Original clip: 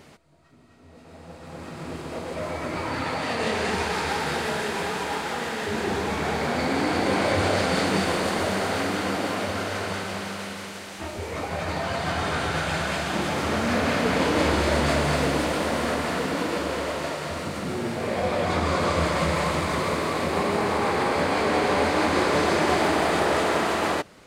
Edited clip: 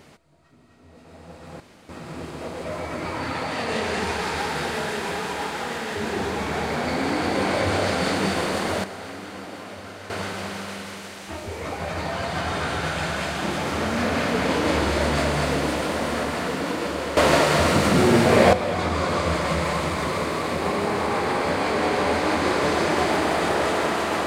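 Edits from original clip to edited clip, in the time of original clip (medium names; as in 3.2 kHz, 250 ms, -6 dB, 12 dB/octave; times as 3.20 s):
1.60 s: insert room tone 0.29 s
8.55–9.81 s: gain -10 dB
16.88–18.24 s: gain +12 dB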